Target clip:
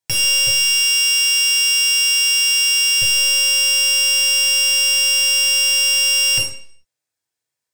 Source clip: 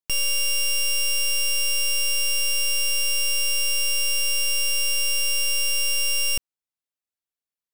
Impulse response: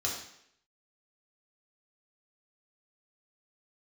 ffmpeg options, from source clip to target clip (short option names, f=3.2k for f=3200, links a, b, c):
-filter_complex "[0:a]asettb=1/sr,asplit=3[a][b][c];[a]atrim=end=0.474[d];[b]atrim=start=0.47:end=3.02,asetpts=PTS-STARTPTS,afade=t=in:d=0.004:c=qsin,afade=t=out:st=2.546:d=0.004:c=qsin,highpass=860[e];[c]atrim=start=3.016[f];[d][e]acrossfade=d=0.004:c1=hsin:c2=qsin[g];[g][f]acrossfade=d=0.004:c1=qsin:c2=hsin[h];[1:a]atrim=start_sample=2205,asetrate=57330,aresample=44100[i];[h][i]afir=irnorm=-1:irlink=0,volume=7.5dB"